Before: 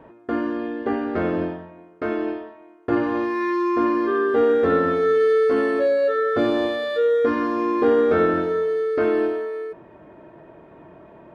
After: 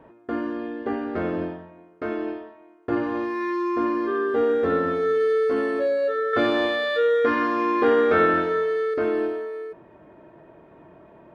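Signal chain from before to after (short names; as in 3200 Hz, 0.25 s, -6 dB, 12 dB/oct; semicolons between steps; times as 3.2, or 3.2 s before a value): 6.33–8.94 bell 2100 Hz +9 dB 2.7 oct; gain -3.5 dB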